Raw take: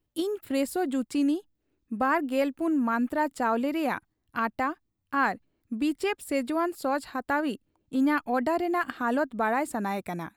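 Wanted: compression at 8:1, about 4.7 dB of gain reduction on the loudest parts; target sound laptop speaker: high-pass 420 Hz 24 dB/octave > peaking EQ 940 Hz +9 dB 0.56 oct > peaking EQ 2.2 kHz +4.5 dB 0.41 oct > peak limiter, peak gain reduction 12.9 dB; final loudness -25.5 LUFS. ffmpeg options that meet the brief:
-af "acompressor=threshold=0.0501:ratio=8,highpass=f=420:w=0.5412,highpass=f=420:w=1.3066,equalizer=f=940:t=o:w=0.56:g=9,equalizer=f=2200:t=o:w=0.41:g=4.5,volume=3.98,alimiter=limit=0.178:level=0:latency=1"

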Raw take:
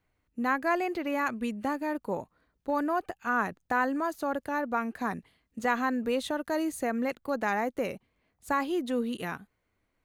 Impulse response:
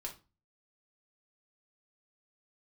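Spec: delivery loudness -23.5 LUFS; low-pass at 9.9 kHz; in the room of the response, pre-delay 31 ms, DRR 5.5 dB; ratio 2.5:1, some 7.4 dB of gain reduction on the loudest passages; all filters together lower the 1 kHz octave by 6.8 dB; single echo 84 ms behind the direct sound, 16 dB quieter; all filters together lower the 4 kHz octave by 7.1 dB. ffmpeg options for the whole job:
-filter_complex "[0:a]lowpass=9900,equalizer=f=1000:t=o:g=-8.5,equalizer=f=4000:t=o:g=-9,acompressor=threshold=0.0126:ratio=2.5,aecho=1:1:84:0.158,asplit=2[s0][s1];[1:a]atrim=start_sample=2205,adelay=31[s2];[s1][s2]afir=irnorm=-1:irlink=0,volume=0.668[s3];[s0][s3]amix=inputs=2:normalize=0,volume=5.96"

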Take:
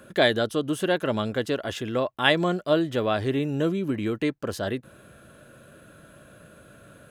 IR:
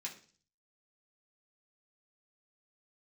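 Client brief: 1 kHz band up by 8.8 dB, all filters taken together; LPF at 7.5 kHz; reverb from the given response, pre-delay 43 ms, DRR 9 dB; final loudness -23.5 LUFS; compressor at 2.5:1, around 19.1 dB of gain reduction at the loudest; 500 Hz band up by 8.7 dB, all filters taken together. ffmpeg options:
-filter_complex "[0:a]lowpass=7500,equalizer=f=500:t=o:g=8,equalizer=f=1000:t=o:g=9,acompressor=threshold=0.0126:ratio=2.5,asplit=2[s0][s1];[1:a]atrim=start_sample=2205,adelay=43[s2];[s1][s2]afir=irnorm=-1:irlink=0,volume=0.422[s3];[s0][s3]amix=inputs=2:normalize=0,volume=3.98"

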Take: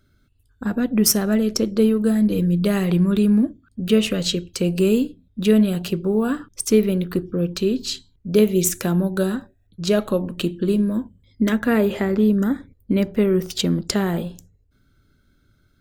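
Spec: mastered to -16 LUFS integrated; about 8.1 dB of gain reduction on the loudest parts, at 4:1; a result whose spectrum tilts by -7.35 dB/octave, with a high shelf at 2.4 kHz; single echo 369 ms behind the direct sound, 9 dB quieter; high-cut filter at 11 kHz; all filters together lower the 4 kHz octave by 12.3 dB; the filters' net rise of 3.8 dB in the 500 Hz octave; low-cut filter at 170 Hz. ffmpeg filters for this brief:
-af "highpass=170,lowpass=11000,equalizer=f=500:t=o:g=5.5,highshelf=f=2400:g=-8.5,equalizer=f=4000:t=o:g=-8.5,acompressor=threshold=0.126:ratio=4,aecho=1:1:369:0.355,volume=2.51"

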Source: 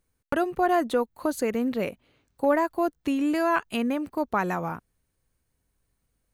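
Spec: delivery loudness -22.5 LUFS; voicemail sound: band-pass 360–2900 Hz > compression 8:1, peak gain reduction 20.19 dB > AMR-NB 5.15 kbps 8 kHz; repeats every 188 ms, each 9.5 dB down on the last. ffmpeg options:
-af "highpass=360,lowpass=2900,aecho=1:1:188|376|564|752:0.335|0.111|0.0365|0.012,acompressor=threshold=0.0112:ratio=8,volume=12.6" -ar 8000 -c:a libopencore_amrnb -b:a 5150

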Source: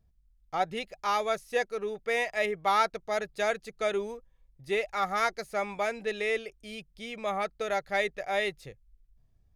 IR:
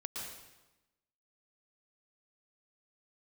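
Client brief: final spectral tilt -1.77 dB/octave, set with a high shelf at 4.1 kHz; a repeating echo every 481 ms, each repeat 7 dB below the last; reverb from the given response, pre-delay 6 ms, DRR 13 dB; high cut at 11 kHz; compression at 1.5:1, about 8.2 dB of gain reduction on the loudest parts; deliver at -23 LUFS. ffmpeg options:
-filter_complex "[0:a]lowpass=11000,highshelf=f=4100:g=-4.5,acompressor=threshold=0.00562:ratio=1.5,aecho=1:1:481|962|1443|1924|2405:0.447|0.201|0.0905|0.0407|0.0183,asplit=2[s0][s1];[1:a]atrim=start_sample=2205,adelay=6[s2];[s1][s2]afir=irnorm=-1:irlink=0,volume=0.224[s3];[s0][s3]amix=inputs=2:normalize=0,volume=5.31"

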